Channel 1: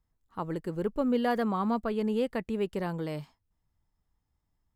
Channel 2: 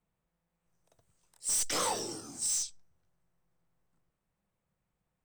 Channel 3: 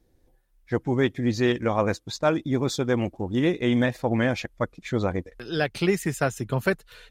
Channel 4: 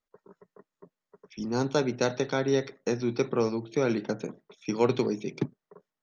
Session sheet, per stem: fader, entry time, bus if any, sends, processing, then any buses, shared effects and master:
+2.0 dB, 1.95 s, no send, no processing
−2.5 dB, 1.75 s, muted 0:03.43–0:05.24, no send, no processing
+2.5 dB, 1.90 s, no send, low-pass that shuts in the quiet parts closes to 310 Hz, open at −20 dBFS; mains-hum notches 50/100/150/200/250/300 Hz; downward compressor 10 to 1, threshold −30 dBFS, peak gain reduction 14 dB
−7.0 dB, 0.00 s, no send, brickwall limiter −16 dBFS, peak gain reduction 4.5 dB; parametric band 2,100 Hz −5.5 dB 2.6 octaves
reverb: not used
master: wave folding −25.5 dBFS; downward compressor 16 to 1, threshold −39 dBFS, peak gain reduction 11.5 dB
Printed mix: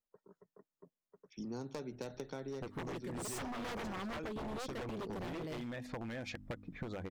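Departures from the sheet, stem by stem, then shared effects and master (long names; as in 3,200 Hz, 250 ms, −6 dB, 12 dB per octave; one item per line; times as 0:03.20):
stem 1: entry 1.95 s → 2.40 s
stem 4: missing brickwall limiter −16 dBFS, peak gain reduction 4.5 dB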